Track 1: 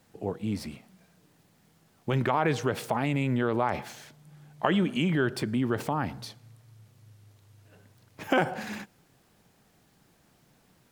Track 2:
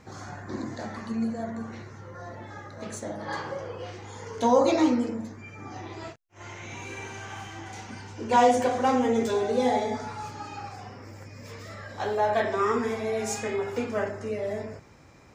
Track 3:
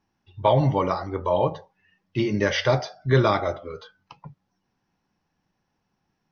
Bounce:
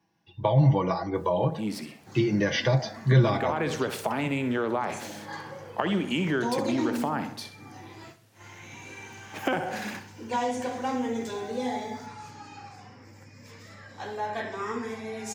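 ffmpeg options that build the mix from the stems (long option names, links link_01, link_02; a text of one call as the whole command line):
ffmpeg -i stem1.wav -i stem2.wav -i stem3.wav -filter_complex "[0:a]highpass=200,adelay=1150,volume=2.5dB,asplit=2[link_01][link_02];[link_02]volume=-11.5dB[link_03];[1:a]equalizer=frequency=400:width_type=o:width=0.33:gain=-6,equalizer=frequency=630:width_type=o:width=0.33:gain=-8,equalizer=frequency=1250:width_type=o:width=0.33:gain=-5,adelay=2000,volume=-4dB,asplit=2[link_04][link_05];[link_05]volume=-13.5dB[link_06];[2:a]bandreject=frequency=1300:width=6.4,aecho=1:1:6.1:0.56,volume=2dB[link_07];[link_03][link_06]amix=inputs=2:normalize=0,aecho=0:1:64|128|192|256|320:1|0.38|0.144|0.0549|0.0209[link_08];[link_01][link_04][link_07][link_08]amix=inputs=4:normalize=0,highpass=85,acrossover=split=170[link_09][link_10];[link_10]acompressor=threshold=-24dB:ratio=4[link_11];[link_09][link_11]amix=inputs=2:normalize=0" out.wav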